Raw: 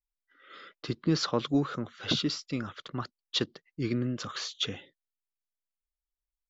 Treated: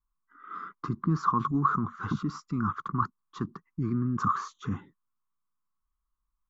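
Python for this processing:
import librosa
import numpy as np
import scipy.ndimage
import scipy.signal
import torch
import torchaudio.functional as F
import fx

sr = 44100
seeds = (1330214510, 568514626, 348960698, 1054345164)

p1 = fx.over_compress(x, sr, threshold_db=-38.0, ratio=-1.0)
p2 = x + (p1 * 10.0 ** (2.0 / 20.0))
y = fx.curve_eq(p2, sr, hz=(130.0, 190.0, 410.0, 580.0, 1100.0, 1800.0, 2900.0, 4600.0, 6600.0), db=(0, 4, -10, -29, 10, -14, -27, -26, -16))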